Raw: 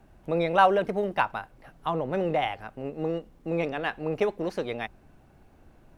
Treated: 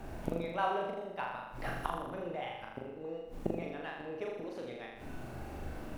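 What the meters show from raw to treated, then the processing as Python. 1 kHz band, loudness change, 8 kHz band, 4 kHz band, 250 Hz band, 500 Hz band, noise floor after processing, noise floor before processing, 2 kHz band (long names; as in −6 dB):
−11.0 dB, −11.5 dB, can't be measured, −10.5 dB, −9.5 dB, −11.5 dB, −48 dBFS, −57 dBFS, −11.0 dB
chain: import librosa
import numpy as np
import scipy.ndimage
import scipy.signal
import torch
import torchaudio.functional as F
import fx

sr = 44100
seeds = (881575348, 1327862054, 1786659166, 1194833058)

y = fx.gate_flip(x, sr, shuts_db=-28.0, range_db=-26)
y = fx.hum_notches(y, sr, base_hz=50, count=4)
y = fx.room_flutter(y, sr, wall_m=6.9, rt60_s=0.97)
y = y * librosa.db_to_amplitude(10.5)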